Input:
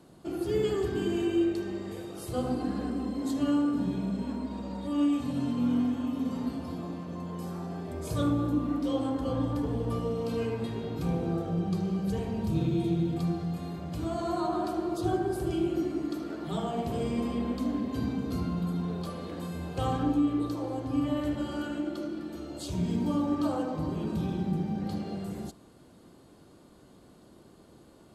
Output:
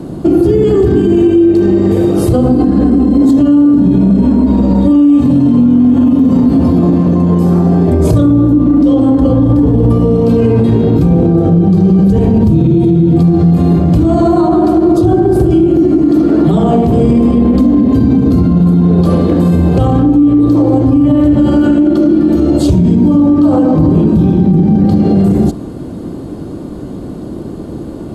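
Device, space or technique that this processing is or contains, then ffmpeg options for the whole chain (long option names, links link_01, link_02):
mastering chain: -af "equalizer=frequency=300:width_type=o:width=0.45:gain=3.5,acompressor=threshold=-29dB:ratio=6,tiltshelf=frequency=750:gain=8,alimiter=level_in=26dB:limit=-1dB:release=50:level=0:latency=1,volume=-1dB"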